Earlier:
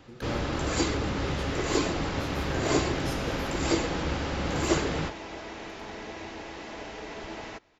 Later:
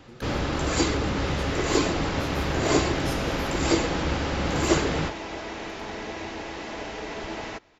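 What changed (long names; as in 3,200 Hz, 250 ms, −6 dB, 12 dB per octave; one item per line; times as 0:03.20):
speech: add high-shelf EQ 5,600 Hz +5 dB
first sound +3.5 dB
second sound +5.0 dB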